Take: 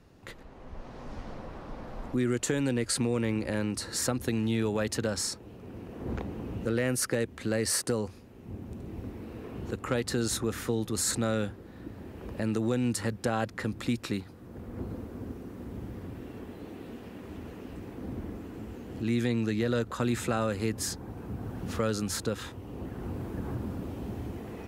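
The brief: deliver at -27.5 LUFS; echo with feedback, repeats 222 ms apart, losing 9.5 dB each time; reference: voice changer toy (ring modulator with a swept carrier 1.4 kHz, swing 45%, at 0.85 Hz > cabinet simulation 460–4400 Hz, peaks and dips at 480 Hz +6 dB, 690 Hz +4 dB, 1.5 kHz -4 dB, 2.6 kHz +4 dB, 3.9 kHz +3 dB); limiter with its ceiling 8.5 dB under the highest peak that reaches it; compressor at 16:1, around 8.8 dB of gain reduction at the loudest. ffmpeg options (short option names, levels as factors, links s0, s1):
-af "acompressor=threshold=0.0251:ratio=16,alimiter=level_in=1.78:limit=0.0631:level=0:latency=1,volume=0.562,aecho=1:1:222|444|666|888:0.335|0.111|0.0365|0.012,aeval=exprs='val(0)*sin(2*PI*1400*n/s+1400*0.45/0.85*sin(2*PI*0.85*n/s))':c=same,highpass=460,equalizer=f=480:t=q:w=4:g=6,equalizer=f=690:t=q:w=4:g=4,equalizer=f=1500:t=q:w=4:g=-4,equalizer=f=2600:t=q:w=4:g=4,equalizer=f=3900:t=q:w=4:g=3,lowpass=f=4400:w=0.5412,lowpass=f=4400:w=1.3066,volume=4.73"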